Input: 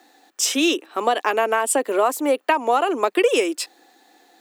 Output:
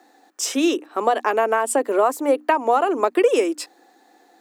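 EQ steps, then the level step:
parametric band 3,100 Hz −7.5 dB 1.3 octaves
high-shelf EQ 7,400 Hz −8 dB
mains-hum notches 60/120/180/240/300 Hz
+1.5 dB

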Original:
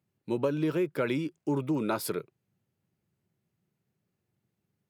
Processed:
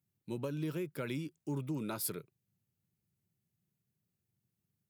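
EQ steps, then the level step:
bass and treble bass +10 dB, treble −2 dB
first-order pre-emphasis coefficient 0.8
+1.0 dB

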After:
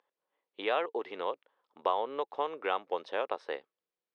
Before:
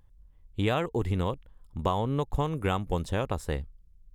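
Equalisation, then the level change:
Savitzky-Golay smoothing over 15 samples
high-pass filter 430 Hz 24 dB per octave
high-frequency loss of the air 120 metres
0.0 dB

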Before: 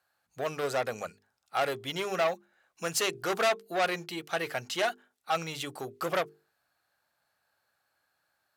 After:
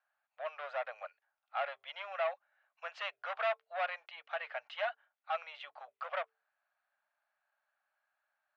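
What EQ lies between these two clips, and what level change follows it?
elliptic high-pass filter 590 Hz, stop band 40 dB
low-pass filter 3,000 Hz 24 dB per octave
−6.0 dB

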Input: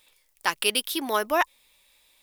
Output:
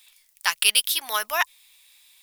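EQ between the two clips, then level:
guitar amp tone stack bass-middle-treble 10-0-10
low-shelf EQ 140 Hz −11.5 dB
+8.0 dB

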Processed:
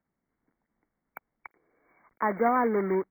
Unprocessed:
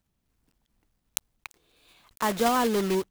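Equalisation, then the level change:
linear-phase brick-wall band-stop 2,300–14,000 Hz
three-way crossover with the lows and the highs turned down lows −15 dB, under 170 Hz, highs −18 dB, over 4,600 Hz
0.0 dB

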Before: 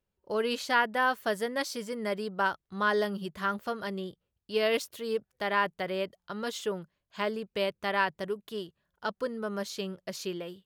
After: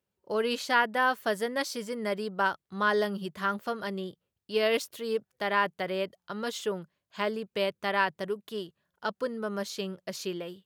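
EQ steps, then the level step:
high-pass filter 99 Hz
+1.0 dB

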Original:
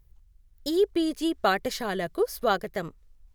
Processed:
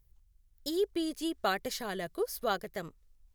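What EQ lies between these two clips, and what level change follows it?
high-shelf EQ 4,000 Hz +6.5 dB
−7.5 dB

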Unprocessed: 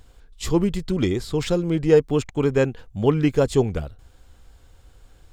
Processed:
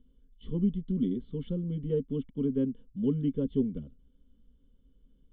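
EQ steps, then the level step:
formant resonators in series i
phaser with its sweep stopped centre 480 Hz, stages 8
+3.5 dB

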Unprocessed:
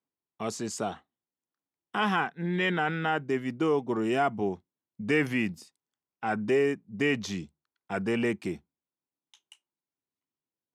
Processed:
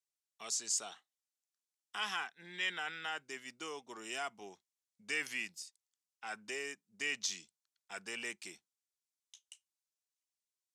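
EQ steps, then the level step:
resonant band-pass 6,900 Hz, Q 1.2
+5.5 dB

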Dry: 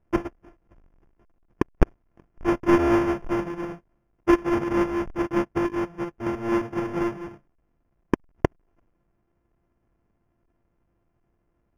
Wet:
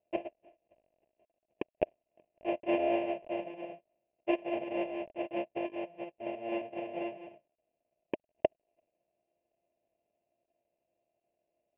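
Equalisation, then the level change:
pair of resonant band-passes 1,300 Hz, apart 2.1 octaves
high-frequency loss of the air 340 metres
+6.0 dB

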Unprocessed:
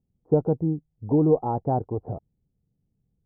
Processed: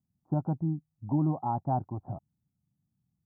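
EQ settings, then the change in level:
high-pass filter 110 Hz 12 dB per octave
phaser with its sweep stopped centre 1,100 Hz, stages 4
−1.0 dB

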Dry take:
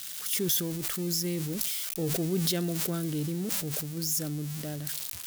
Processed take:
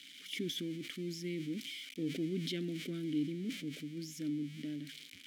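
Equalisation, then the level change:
formant filter i
+7.0 dB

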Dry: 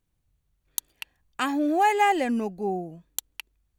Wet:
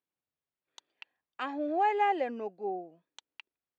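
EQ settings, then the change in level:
dynamic equaliser 510 Hz, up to +7 dB, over −35 dBFS, Q 1.1
band-pass filter 360–4,600 Hz
high-frequency loss of the air 110 metres
−8.5 dB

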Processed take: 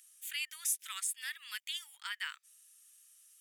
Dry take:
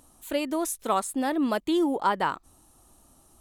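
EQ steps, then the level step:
Butterworth high-pass 1,800 Hz 36 dB per octave
notch filter 4,100 Hz, Q 7.4
0.0 dB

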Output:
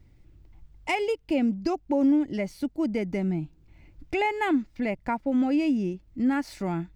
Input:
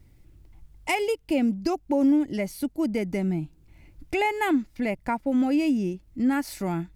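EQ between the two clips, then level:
parametric band 12,000 Hz −14.5 dB 0.94 octaves
−1.0 dB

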